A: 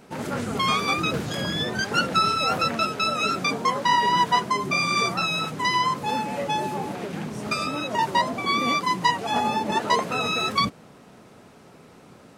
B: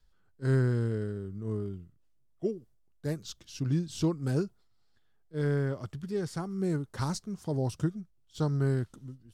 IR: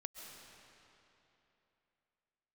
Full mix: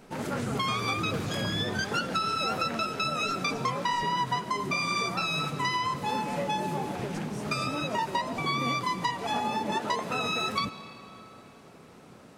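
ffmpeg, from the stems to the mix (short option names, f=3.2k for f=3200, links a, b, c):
-filter_complex "[0:a]acompressor=threshold=-23dB:ratio=6,volume=-5dB,asplit=2[a][b];[b]volume=-4.5dB[c];[1:a]bass=f=250:g=15,treble=f=4k:g=10,acompressor=threshold=-22dB:ratio=6,volume=-15.5dB[d];[2:a]atrim=start_sample=2205[e];[c][e]afir=irnorm=-1:irlink=0[f];[a][d][f]amix=inputs=3:normalize=0"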